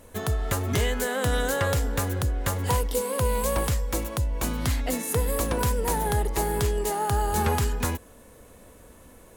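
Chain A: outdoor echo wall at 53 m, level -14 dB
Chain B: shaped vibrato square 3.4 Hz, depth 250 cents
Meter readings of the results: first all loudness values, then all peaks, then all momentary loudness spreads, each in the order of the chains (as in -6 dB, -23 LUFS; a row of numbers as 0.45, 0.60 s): -26.5, -26.5 LUFS; -14.5, -14.5 dBFS; 4, 4 LU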